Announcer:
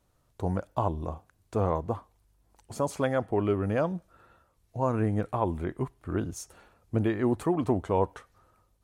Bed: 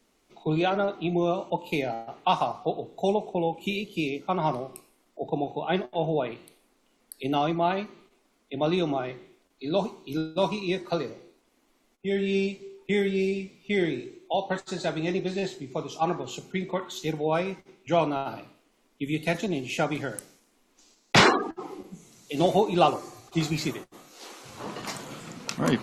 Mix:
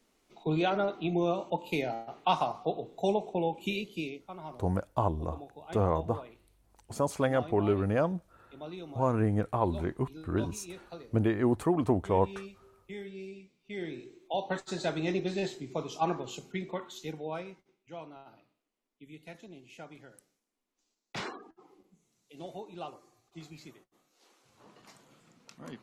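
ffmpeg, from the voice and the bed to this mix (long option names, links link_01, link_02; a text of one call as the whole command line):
ffmpeg -i stem1.wav -i stem2.wav -filter_complex "[0:a]adelay=4200,volume=-0.5dB[link_01];[1:a]volume=11dB,afade=type=out:start_time=3.78:duration=0.51:silence=0.199526,afade=type=in:start_time=13.63:duration=1.06:silence=0.188365,afade=type=out:start_time=15.95:duration=1.88:silence=0.125893[link_02];[link_01][link_02]amix=inputs=2:normalize=0" out.wav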